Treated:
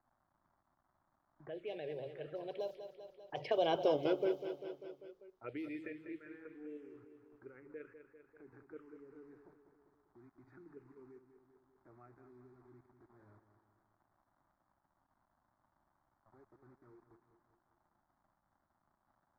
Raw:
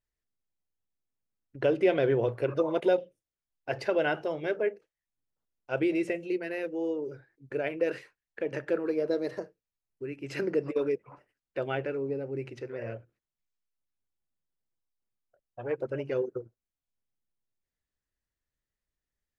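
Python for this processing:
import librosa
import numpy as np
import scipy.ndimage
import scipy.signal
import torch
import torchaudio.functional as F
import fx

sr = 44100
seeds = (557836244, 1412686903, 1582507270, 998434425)

p1 = fx.doppler_pass(x, sr, speed_mps=33, closest_m=4.1, pass_at_s=3.88)
p2 = fx.level_steps(p1, sr, step_db=19)
p3 = p1 + (p2 * librosa.db_to_amplitude(1.0))
p4 = fx.quant_dither(p3, sr, seeds[0], bits=12, dither='none')
p5 = fx.dmg_crackle(p4, sr, seeds[1], per_s=400.0, level_db=-65.0)
p6 = fx.env_phaser(p5, sr, low_hz=450.0, high_hz=1800.0, full_db=-40.0)
p7 = fx.env_lowpass(p6, sr, base_hz=730.0, full_db=-41.0)
p8 = fx.peak_eq(p7, sr, hz=180.0, db=-6.0, octaves=1.5)
p9 = fx.echo_feedback(p8, sr, ms=197, feedback_pct=50, wet_db=-11)
p10 = fx.band_squash(p9, sr, depth_pct=40)
y = p10 * librosa.db_to_amplitude(6.5)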